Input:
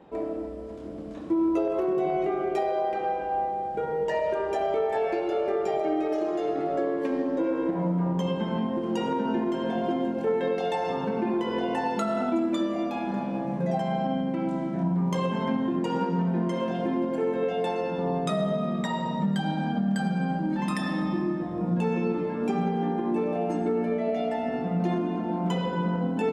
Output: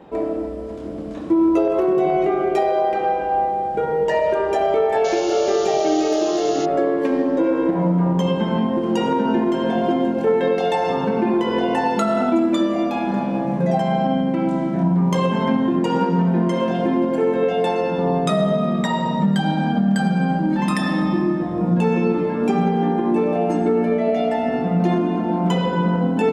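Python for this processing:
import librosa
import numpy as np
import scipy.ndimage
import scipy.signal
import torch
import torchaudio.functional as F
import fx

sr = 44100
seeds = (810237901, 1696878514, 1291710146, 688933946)

y = fx.spec_paint(x, sr, seeds[0], shape='noise', start_s=5.04, length_s=1.62, low_hz=2600.0, high_hz=7100.0, level_db=-44.0)
y = y * librosa.db_to_amplitude(8.0)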